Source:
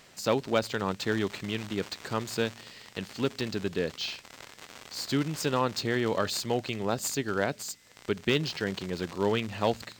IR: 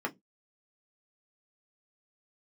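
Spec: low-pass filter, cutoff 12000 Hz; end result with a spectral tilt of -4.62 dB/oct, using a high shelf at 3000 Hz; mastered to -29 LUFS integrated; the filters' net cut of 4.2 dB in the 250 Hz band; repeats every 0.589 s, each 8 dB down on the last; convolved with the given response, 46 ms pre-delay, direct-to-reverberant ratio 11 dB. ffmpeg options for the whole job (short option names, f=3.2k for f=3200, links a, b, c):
-filter_complex "[0:a]lowpass=12k,equalizer=f=250:t=o:g=-5.5,highshelf=f=3k:g=-4.5,aecho=1:1:589|1178|1767|2356|2945:0.398|0.159|0.0637|0.0255|0.0102,asplit=2[a][b];[1:a]atrim=start_sample=2205,adelay=46[c];[b][c]afir=irnorm=-1:irlink=0,volume=-16.5dB[d];[a][d]amix=inputs=2:normalize=0,volume=3dB"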